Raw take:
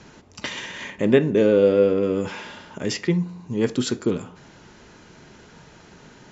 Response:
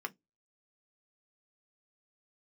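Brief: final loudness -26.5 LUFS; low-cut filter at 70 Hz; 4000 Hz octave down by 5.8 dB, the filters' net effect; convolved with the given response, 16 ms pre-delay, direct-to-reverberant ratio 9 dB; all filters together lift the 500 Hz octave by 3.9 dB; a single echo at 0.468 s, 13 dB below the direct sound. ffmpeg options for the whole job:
-filter_complex "[0:a]highpass=70,equalizer=f=500:t=o:g=4.5,equalizer=f=4k:t=o:g=-8,aecho=1:1:468:0.224,asplit=2[a][b];[1:a]atrim=start_sample=2205,adelay=16[c];[b][c]afir=irnorm=-1:irlink=0,volume=-10.5dB[d];[a][d]amix=inputs=2:normalize=0,volume=-8.5dB"

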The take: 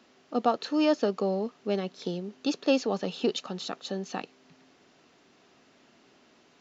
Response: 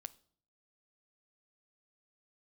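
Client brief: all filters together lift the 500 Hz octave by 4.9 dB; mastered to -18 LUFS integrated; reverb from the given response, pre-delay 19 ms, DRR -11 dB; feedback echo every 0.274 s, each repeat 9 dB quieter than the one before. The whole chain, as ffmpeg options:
-filter_complex "[0:a]equalizer=f=500:t=o:g=6,aecho=1:1:274|548|822|1096:0.355|0.124|0.0435|0.0152,asplit=2[a][b];[1:a]atrim=start_sample=2205,adelay=19[c];[b][c]afir=irnorm=-1:irlink=0,volume=16dB[d];[a][d]amix=inputs=2:normalize=0,volume=-3dB"

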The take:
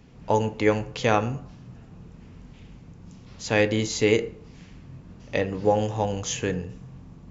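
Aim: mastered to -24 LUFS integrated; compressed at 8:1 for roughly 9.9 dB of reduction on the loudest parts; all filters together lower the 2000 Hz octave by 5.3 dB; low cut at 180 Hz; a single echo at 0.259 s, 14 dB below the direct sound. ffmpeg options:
-af "highpass=180,equalizer=f=2k:t=o:g=-6.5,acompressor=threshold=-26dB:ratio=8,aecho=1:1:259:0.2,volume=8.5dB"

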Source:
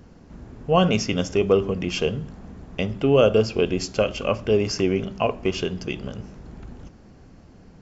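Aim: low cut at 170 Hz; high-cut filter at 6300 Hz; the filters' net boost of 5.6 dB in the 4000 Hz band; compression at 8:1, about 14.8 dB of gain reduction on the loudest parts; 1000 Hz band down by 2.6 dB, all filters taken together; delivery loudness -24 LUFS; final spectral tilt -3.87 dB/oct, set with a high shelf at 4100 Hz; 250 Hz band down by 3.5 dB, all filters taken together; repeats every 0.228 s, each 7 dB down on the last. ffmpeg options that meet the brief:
-af "highpass=170,lowpass=6.3k,equalizer=f=250:t=o:g=-3,equalizer=f=1k:t=o:g=-4,equalizer=f=4k:t=o:g=7.5,highshelf=f=4.1k:g=3.5,acompressor=threshold=-29dB:ratio=8,aecho=1:1:228|456|684|912|1140:0.447|0.201|0.0905|0.0407|0.0183,volume=9dB"

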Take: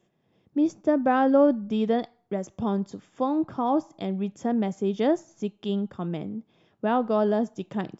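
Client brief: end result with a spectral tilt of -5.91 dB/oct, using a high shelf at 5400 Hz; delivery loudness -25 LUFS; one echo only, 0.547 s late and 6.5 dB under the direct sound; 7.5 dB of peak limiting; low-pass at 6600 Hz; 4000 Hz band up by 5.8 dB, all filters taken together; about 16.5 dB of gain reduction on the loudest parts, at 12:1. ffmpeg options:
-af "lowpass=6.6k,equalizer=f=4k:t=o:g=6.5,highshelf=f=5.4k:g=4,acompressor=threshold=-31dB:ratio=12,alimiter=level_in=4.5dB:limit=-24dB:level=0:latency=1,volume=-4.5dB,aecho=1:1:547:0.473,volume=12.5dB"

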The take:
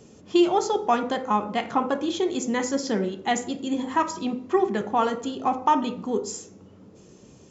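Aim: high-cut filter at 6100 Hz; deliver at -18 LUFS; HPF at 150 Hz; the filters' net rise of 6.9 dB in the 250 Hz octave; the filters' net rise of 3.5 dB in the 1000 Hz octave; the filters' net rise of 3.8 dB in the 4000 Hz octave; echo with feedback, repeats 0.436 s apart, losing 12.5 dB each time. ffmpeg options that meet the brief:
-af "highpass=150,lowpass=6.1k,equalizer=f=250:t=o:g=9,equalizer=f=1k:t=o:g=3.5,equalizer=f=4k:t=o:g=5.5,aecho=1:1:436|872|1308:0.237|0.0569|0.0137,volume=2dB"

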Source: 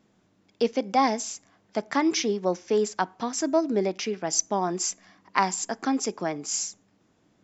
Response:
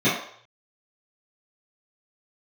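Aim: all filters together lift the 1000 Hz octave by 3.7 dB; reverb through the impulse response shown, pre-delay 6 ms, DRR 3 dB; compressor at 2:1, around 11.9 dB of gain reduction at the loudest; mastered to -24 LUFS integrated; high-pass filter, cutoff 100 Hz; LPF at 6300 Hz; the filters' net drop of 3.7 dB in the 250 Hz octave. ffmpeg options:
-filter_complex "[0:a]highpass=100,lowpass=6.3k,equalizer=f=250:t=o:g=-5,equalizer=f=1k:t=o:g=5,acompressor=threshold=-36dB:ratio=2,asplit=2[a][b];[1:a]atrim=start_sample=2205,adelay=6[c];[b][c]afir=irnorm=-1:irlink=0,volume=-21dB[d];[a][d]amix=inputs=2:normalize=0,volume=8.5dB"

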